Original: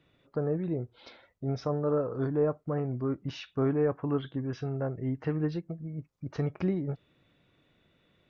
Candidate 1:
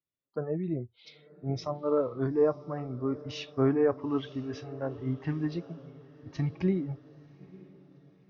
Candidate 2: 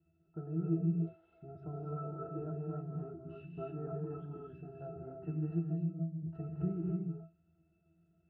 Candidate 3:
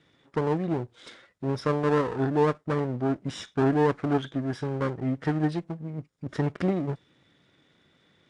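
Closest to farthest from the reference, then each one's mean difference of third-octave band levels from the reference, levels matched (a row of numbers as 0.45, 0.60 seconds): 1, 3, 2; 4.0, 5.5, 7.5 decibels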